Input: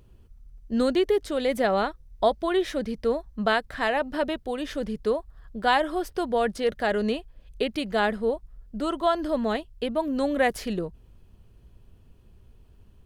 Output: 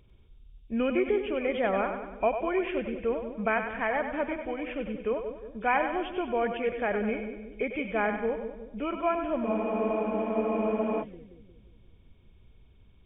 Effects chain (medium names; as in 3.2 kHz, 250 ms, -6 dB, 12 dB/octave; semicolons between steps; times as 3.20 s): knee-point frequency compression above 2.1 kHz 4:1; two-band feedback delay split 450 Hz, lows 178 ms, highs 97 ms, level -7.5 dB; spectral freeze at 9.48 s, 1.53 s; trim -4.5 dB